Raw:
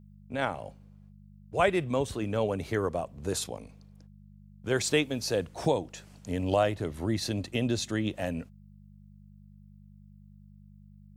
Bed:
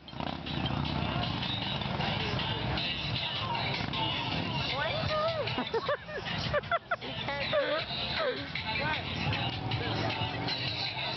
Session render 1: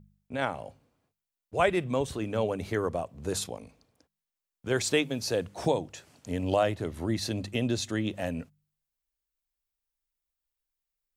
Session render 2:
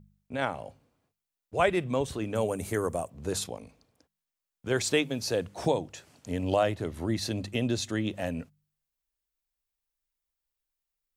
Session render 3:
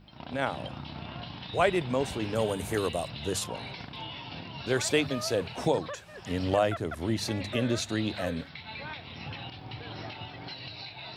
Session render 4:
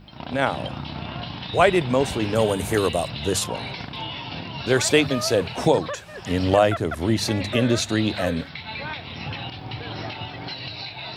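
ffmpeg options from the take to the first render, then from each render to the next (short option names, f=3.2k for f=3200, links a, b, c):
-af "bandreject=f=50:t=h:w=4,bandreject=f=100:t=h:w=4,bandreject=f=150:t=h:w=4,bandreject=f=200:t=h:w=4"
-filter_complex "[0:a]asettb=1/sr,asplit=3[a][b][c];[a]atrim=end=2.354[d];[b]atrim=start=2.35:end=3.1,asetpts=PTS-STARTPTS,afade=t=in:d=0.004:c=qsin,afade=t=out:st=0.746:d=0.004:c=qsin,highshelf=f=6.1k:t=q:w=1.5:g=12[e];[c]atrim=start=3.096[f];[d][e]acrossfade=d=0.004:c1=hsin:c2=qsin[g];[g][f]acrossfade=d=0.004:c1=qsin:c2=hsin"
-filter_complex "[1:a]volume=-8.5dB[a];[0:a][a]amix=inputs=2:normalize=0"
-af "volume=8dB,alimiter=limit=-3dB:level=0:latency=1"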